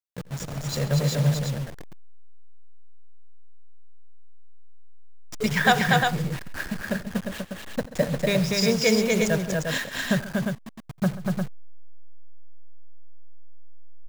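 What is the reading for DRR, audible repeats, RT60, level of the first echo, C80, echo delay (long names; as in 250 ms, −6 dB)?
no reverb audible, 4, no reverb audible, −19.5 dB, no reverb audible, 86 ms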